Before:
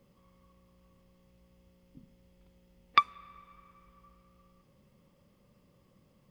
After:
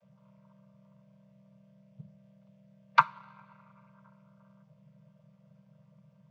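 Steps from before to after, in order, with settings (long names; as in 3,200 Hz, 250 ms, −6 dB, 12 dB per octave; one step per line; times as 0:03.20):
channel vocoder with a chord as carrier minor triad, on C3
elliptic band-stop filter 190–510 Hz, stop band 40 dB
in parallel at −9 dB: dead-zone distortion −47 dBFS
on the sum: coupled-rooms reverb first 0.3 s, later 1.5 s, DRR 17 dB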